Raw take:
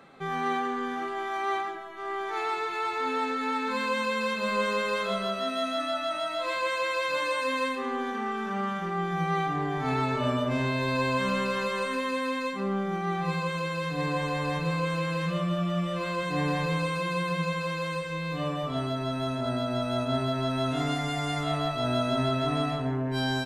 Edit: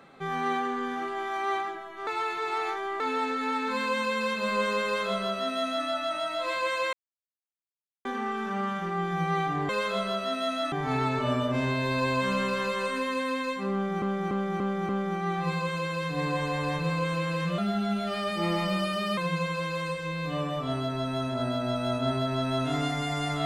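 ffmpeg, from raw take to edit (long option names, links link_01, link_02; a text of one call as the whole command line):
ffmpeg -i in.wav -filter_complex "[0:a]asplit=13[link_01][link_02][link_03][link_04][link_05][link_06][link_07][link_08][link_09][link_10][link_11][link_12][link_13];[link_01]atrim=end=2.072[link_14];[link_02]atrim=start=2.068:end=3.002,asetpts=PTS-STARTPTS,areverse[link_15];[link_03]atrim=start=2.998:end=6.93,asetpts=PTS-STARTPTS,afade=type=out:start_time=3.928:duration=0.004:curve=hsin[link_16];[link_04]atrim=start=6.93:end=8.05,asetpts=PTS-STARTPTS,volume=0[link_17];[link_05]atrim=start=8.05:end=9.692,asetpts=PTS-STARTPTS,afade=type=in:duration=0.004:curve=hsin[link_18];[link_06]atrim=start=4.838:end=5.872[link_19];[link_07]atrim=start=9.688:end=12.992[link_20];[link_08]atrim=start=12.698:end=12.992[link_21];[link_09]atrim=start=12.698:end=12.992[link_22];[link_10]atrim=start=12.698:end=12.992[link_23];[link_11]atrim=start=12.698:end=15.394[link_24];[link_12]atrim=start=15.39:end=17.24,asetpts=PTS-STARTPTS,asetrate=51156,aresample=44100[link_25];[link_13]atrim=start=17.236[link_26];[link_14][link_15]acrossfade=duration=0.004:curve1=hsin:curve2=hsin[link_27];[link_16][link_17][link_18]concat=n=3:v=0:a=1[link_28];[link_27][link_28]acrossfade=duration=0.004:curve1=hsin:curve2=hsin[link_29];[link_29][link_19]acrossfade=duration=0.004:curve1=hsin:curve2=hsin[link_30];[link_30][link_20]acrossfade=duration=0.004:curve1=hsin:curve2=hsin[link_31];[link_31][link_21]acrossfade=duration=0.004:curve1=hsin:curve2=hsin[link_32];[link_32][link_22]acrossfade=duration=0.004:curve1=hsin:curve2=hsin[link_33];[link_33][link_23]acrossfade=duration=0.004:curve1=hsin:curve2=hsin[link_34];[link_34][link_24]acrossfade=duration=0.004:curve1=hsin:curve2=hsin[link_35];[link_35][link_25]acrossfade=duration=0.004:curve1=hsin:curve2=hsin[link_36];[link_36][link_26]acrossfade=duration=0.004:curve1=hsin:curve2=hsin" out.wav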